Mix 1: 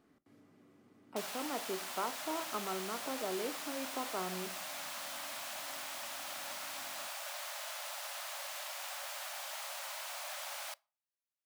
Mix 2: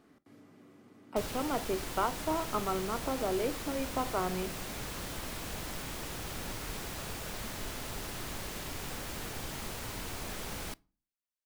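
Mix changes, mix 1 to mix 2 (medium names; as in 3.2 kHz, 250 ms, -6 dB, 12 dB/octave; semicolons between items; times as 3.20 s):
speech +6.5 dB; background: remove Chebyshev high-pass 550 Hz, order 10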